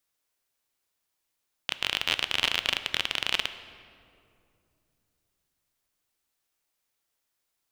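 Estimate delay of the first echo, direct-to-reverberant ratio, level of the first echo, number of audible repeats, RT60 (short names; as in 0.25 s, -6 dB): none, 11.0 dB, none, none, 2.6 s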